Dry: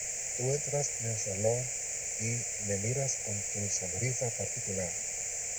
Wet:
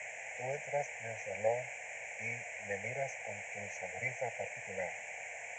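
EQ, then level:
resonant band-pass 1,300 Hz, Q 1.5
high-frequency loss of the air 79 metres
phaser with its sweep stopped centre 1,300 Hz, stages 6
+10.5 dB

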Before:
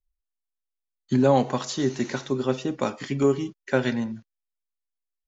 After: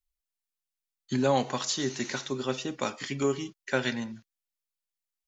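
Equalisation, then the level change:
tilt shelving filter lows −5.5 dB, about 1,300 Hz
−2.0 dB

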